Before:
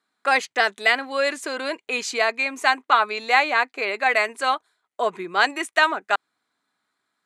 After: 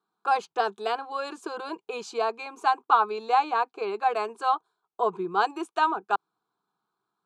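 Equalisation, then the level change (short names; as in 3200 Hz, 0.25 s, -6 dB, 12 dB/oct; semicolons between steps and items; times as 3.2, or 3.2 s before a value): LPF 1100 Hz 6 dB/oct; fixed phaser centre 390 Hz, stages 8; +2.5 dB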